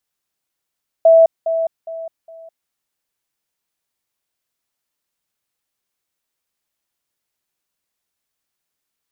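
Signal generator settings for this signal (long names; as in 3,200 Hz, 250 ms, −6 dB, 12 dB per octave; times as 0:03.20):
level staircase 656 Hz −5.5 dBFS, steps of −10 dB, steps 4, 0.21 s 0.20 s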